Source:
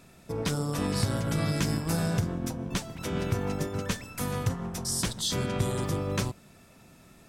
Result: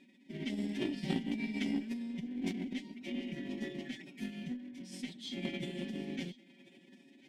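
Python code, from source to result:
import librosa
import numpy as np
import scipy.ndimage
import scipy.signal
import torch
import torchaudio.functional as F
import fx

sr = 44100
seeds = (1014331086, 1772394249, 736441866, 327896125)

p1 = x + 0.74 * np.pad(x, (int(7.4 * sr / 1000.0), 0))[:len(x)]
p2 = fx.echo_thinned(p1, sr, ms=1042, feedback_pct=28, hz=230.0, wet_db=-22)
p3 = (np.mod(10.0 ** (28.5 / 20.0) * p2 + 1.0, 2.0) - 1.0) / 10.0 ** (28.5 / 20.0)
p4 = p2 + (p3 * librosa.db_to_amplitude(-11.0))
p5 = fx.vowel_filter(p4, sr, vowel='i')
p6 = fx.pitch_keep_formants(p5, sr, semitones=6.0)
p7 = fx.cheby_harmonics(p6, sr, harmonics=(2, 3, 4), levels_db=(-25, -17, -27), full_scale_db=-24.0)
y = p7 * librosa.db_to_amplitude(4.5)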